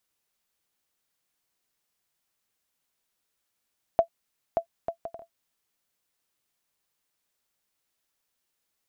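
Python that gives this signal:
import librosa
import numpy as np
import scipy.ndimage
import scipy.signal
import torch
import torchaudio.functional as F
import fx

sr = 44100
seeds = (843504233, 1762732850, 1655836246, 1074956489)

y = fx.bouncing_ball(sr, first_gap_s=0.58, ratio=0.54, hz=672.0, decay_ms=94.0, level_db=-9.5)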